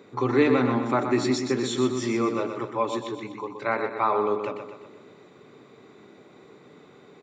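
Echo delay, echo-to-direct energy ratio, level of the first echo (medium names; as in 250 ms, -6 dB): 124 ms, -6.0 dB, -7.5 dB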